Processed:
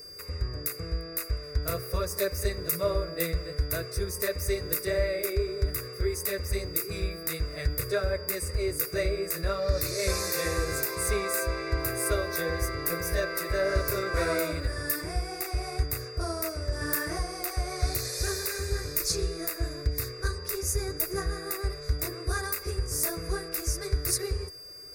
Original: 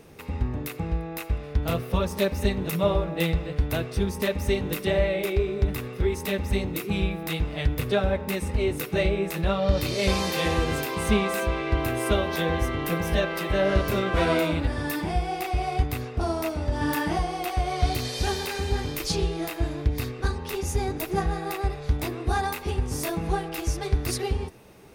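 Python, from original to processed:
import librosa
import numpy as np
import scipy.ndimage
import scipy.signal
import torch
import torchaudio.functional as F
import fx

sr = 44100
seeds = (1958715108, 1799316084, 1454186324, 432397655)

y = x + 10.0 ** (-43.0 / 20.0) * np.sin(2.0 * np.pi * 4800.0 * np.arange(len(x)) / sr)
y = fx.high_shelf(y, sr, hz=3300.0, db=11.5)
y = fx.fixed_phaser(y, sr, hz=840.0, stages=6)
y = y * 10.0 ** (-3.0 / 20.0)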